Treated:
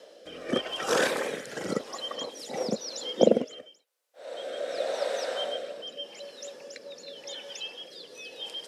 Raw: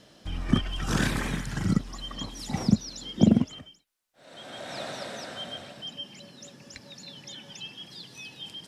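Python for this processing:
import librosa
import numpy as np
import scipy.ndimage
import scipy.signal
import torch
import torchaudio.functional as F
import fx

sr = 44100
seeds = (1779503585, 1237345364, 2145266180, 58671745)

y = fx.highpass_res(x, sr, hz=500.0, q=4.9)
y = fx.rotary(y, sr, hz=0.9)
y = y * librosa.db_to_amplitude(3.5)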